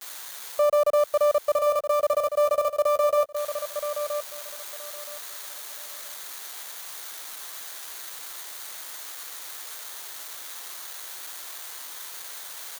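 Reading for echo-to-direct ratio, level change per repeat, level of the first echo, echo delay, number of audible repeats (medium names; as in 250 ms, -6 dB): -8.5 dB, -14.0 dB, -8.5 dB, 972 ms, 2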